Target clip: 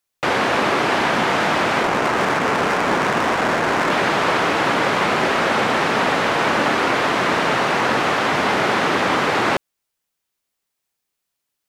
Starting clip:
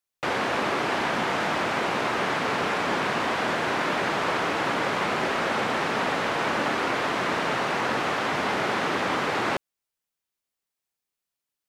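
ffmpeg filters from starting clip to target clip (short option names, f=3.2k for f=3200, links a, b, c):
-filter_complex "[0:a]asettb=1/sr,asplit=3[a][b][c];[a]atrim=end=1.834[d];[b]atrim=start=1.83:end=3.91,asetpts=PTS-STARTPTS,afade=t=in:d=0.004:c=qsin,afade=t=out:st=2.076:d=0.004:c=qsin,adynamicsmooth=sensitivity=3.5:basefreq=620[e];[c]atrim=start=3.906[f];[d][e]acrossfade=d=0.004:c1=hsin:c2=qsin[g];[g][f]acrossfade=d=0.004:c1=qsin:c2=hsin,volume=7.5dB"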